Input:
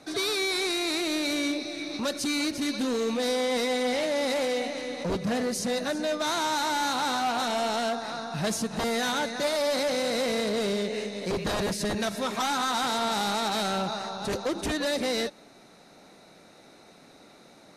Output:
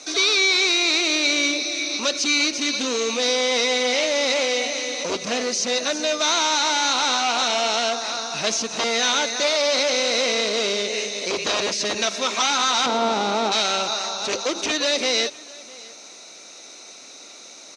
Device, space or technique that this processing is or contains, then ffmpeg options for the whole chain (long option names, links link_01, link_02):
car door speaker: -filter_complex "[0:a]aemphasis=mode=production:type=riaa,acrossover=split=4300[link_01][link_02];[link_02]acompressor=threshold=-42dB:ratio=4:attack=1:release=60[link_03];[link_01][link_03]amix=inputs=2:normalize=0,highpass=87,equalizer=frequency=120:width_type=q:width=4:gain=-8,equalizer=frequency=180:width_type=q:width=4:gain=-8,equalizer=frequency=820:width_type=q:width=4:gain=-4,equalizer=frequency=1700:width_type=q:width=4:gain=-6,equalizer=frequency=2500:width_type=q:width=4:gain=4,equalizer=frequency=6100:width_type=q:width=4:gain=9,lowpass=frequency=6900:width=0.5412,lowpass=frequency=6900:width=1.3066,asettb=1/sr,asplit=3[link_04][link_05][link_06];[link_04]atrim=end=12.864[link_07];[link_05]atrim=start=12.86:end=13.52,asetpts=PTS-STARTPTS,afade=type=in:duration=0.004:curve=qsin,afade=type=out:start_time=0.656:duration=0.004:curve=qsin,tiltshelf=frequency=1100:gain=10[link_08];[link_06]atrim=start=13.516[link_09];[link_07][link_08]acrossfade=duration=0.004:curve1=hsin:curve2=qsin[link_10];[link_10][link_09]acrossfade=duration=0.004:curve1=qsin:curve2=hsin,aecho=1:1:654:0.075,volume=7dB"